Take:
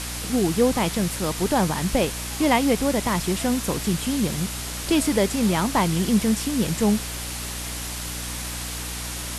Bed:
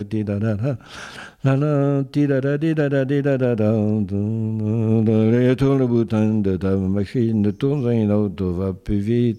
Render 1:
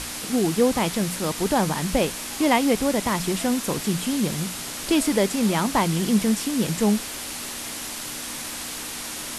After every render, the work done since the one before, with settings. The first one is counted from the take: hum notches 60/120/180 Hz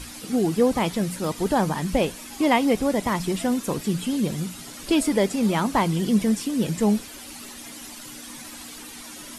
noise reduction 11 dB, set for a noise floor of -33 dBFS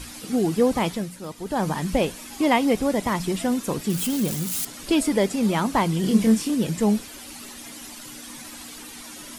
0.87–1.70 s: dip -8.5 dB, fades 0.24 s; 3.90–4.65 s: zero-crossing glitches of -21.5 dBFS; 6.01–6.55 s: doubling 27 ms -3 dB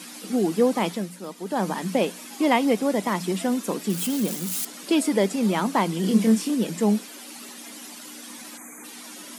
8.57–8.84 s: time-frequency box 2.5–6 kHz -29 dB; elliptic high-pass 180 Hz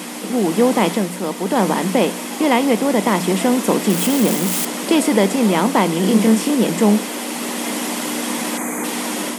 spectral levelling over time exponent 0.6; level rider gain up to 7 dB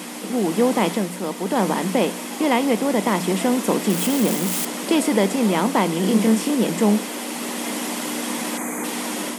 trim -3.5 dB

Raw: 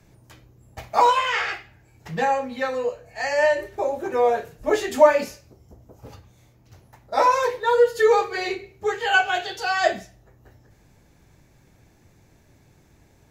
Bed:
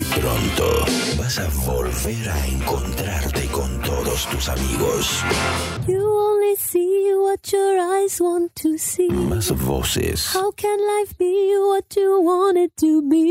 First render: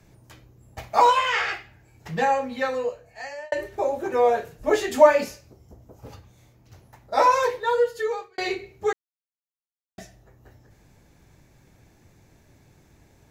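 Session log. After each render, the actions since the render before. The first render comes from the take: 2.70–3.52 s: fade out; 7.43–8.38 s: fade out linear; 8.93–9.98 s: mute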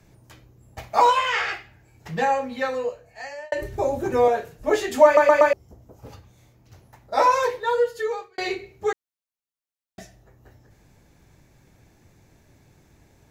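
3.62–4.28 s: tone controls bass +14 dB, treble +5 dB; 5.05 s: stutter in place 0.12 s, 4 plays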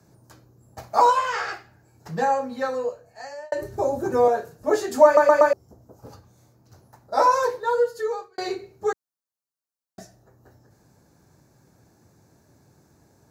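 high-pass 100 Hz 12 dB/octave; high-order bell 2.6 kHz -10.5 dB 1.1 oct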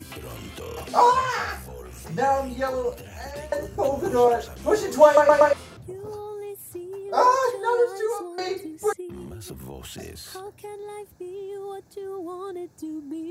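add bed -18 dB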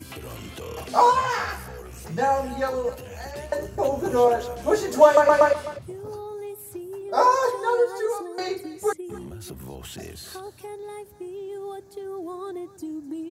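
delay 256 ms -17 dB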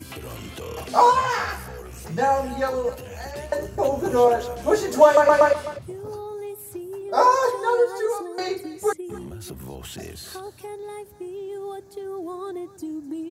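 trim +1.5 dB; peak limiter -3 dBFS, peak gain reduction 1.5 dB

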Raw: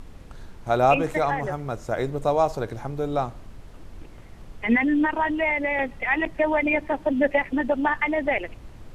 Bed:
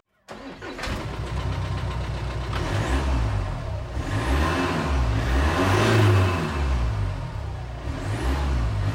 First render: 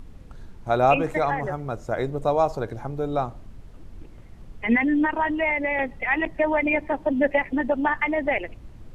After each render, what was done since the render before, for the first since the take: noise reduction 6 dB, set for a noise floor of -44 dBFS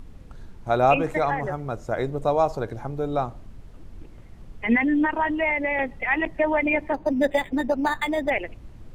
6.94–8.30 s: decimation joined by straight lines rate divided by 8×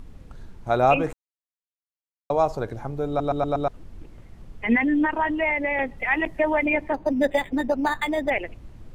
1.13–2.30 s: mute; 3.08 s: stutter in place 0.12 s, 5 plays; 5.98–6.66 s: treble shelf 7.9 kHz +8.5 dB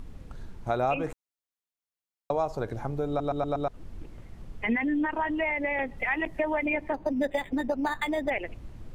compression 2.5:1, threshold -27 dBFS, peak gain reduction 9.5 dB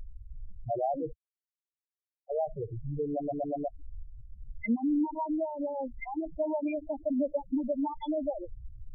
touch-sensitive phaser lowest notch 150 Hz, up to 1.9 kHz, full sweep at -27 dBFS; loudest bins only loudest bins 4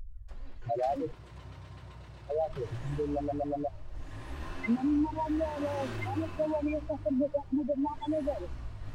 add bed -20 dB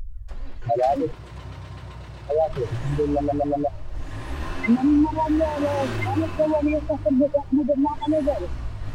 trim +10 dB

